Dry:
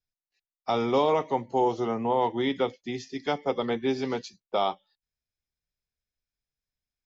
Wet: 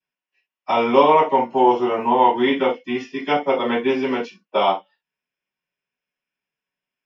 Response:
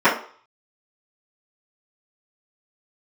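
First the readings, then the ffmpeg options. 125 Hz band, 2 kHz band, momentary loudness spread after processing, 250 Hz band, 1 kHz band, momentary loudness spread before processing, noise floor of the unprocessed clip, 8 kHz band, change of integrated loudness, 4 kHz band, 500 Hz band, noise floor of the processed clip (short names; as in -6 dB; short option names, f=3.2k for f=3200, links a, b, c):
0.0 dB, +11.0 dB, 12 LU, +7.5 dB, +11.0 dB, 10 LU, under -85 dBFS, n/a, +9.0 dB, +7.0 dB, +8.0 dB, under -85 dBFS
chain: -filter_complex "[0:a]equalizer=f=2.8k:w=2.8:g=14,acrossover=split=170|910|2700[a][b][c][d];[a]acrusher=samples=34:mix=1:aa=0.000001[e];[e][b][c][d]amix=inputs=4:normalize=0[f];[1:a]atrim=start_sample=2205,atrim=end_sample=3528[g];[f][g]afir=irnorm=-1:irlink=0,volume=-15.5dB"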